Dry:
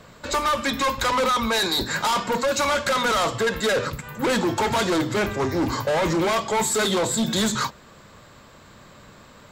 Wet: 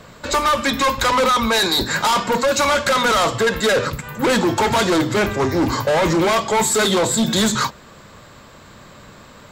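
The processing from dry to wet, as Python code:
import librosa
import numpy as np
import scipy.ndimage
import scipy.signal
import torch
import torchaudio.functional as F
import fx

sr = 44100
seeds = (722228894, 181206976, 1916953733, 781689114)

y = x * 10.0 ** (5.0 / 20.0)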